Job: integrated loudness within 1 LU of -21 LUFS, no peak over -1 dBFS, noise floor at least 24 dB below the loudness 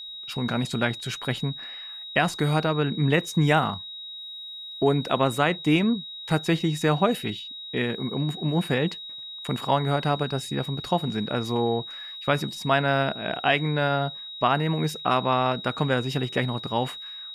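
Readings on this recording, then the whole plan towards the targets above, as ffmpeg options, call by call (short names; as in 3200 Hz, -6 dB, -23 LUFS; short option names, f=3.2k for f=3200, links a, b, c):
steady tone 3800 Hz; tone level -36 dBFS; loudness -25.5 LUFS; peak -7.5 dBFS; loudness target -21.0 LUFS
-> -af "bandreject=f=3.8k:w=30"
-af "volume=4.5dB"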